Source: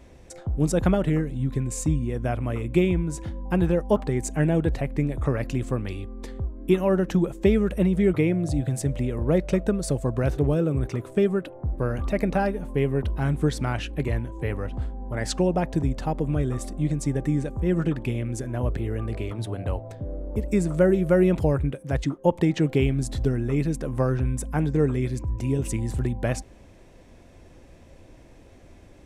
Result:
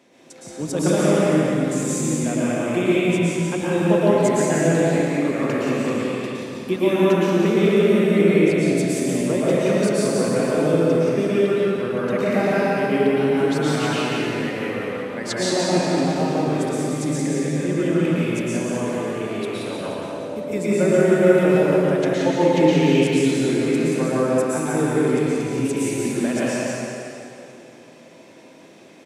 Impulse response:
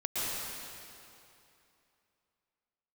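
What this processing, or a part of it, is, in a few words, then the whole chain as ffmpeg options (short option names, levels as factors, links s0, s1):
PA in a hall: -filter_complex "[0:a]highpass=f=180:w=0.5412,highpass=f=180:w=1.3066,equalizer=f=3800:t=o:w=1.9:g=4.5,aecho=1:1:177:0.562[s0];[1:a]atrim=start_sample=2205[s1];[s0][s1]afir=irnorm=-1:irlink=0,volume=0.841"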